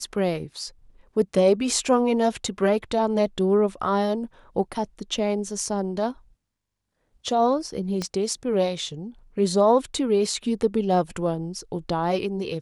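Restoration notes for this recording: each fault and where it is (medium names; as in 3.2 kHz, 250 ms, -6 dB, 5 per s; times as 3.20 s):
8.02 s: pop -15 dBFS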